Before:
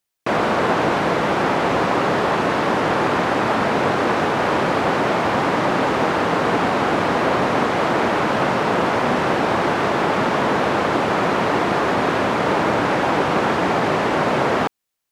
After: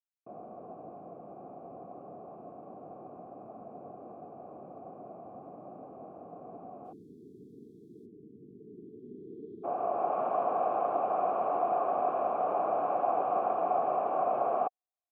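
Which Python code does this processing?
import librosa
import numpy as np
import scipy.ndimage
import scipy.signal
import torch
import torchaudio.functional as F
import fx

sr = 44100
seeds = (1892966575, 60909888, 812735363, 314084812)

y = fx.filter_sweep_lowpass(x, sr, from_hz=220.0, to_hz=950.0, start_s=8.46, end_s=10.22, q=0.7)
y = fx.dmg_noise_colour(y, sr, seeds[0], colour='violet', level_db=-50.0, at=(6.84, 8.05), fade=0.02)
y = fx.vowel_filter(y, sr, vowel='a')
y = fx.spec_erase(y, sr, start_s=6.93, length_s=2.71, low_hz=470.0, high_hz=3200.0)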